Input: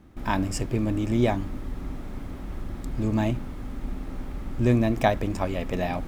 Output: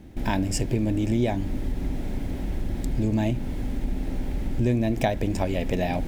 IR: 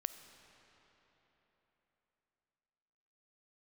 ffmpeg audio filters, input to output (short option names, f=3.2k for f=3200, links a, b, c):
-af "equalizer=f=1.2k:t=o:w=0.46:g=-15,acompressor=threshold=-29dB:ratio=3,volume=7dB"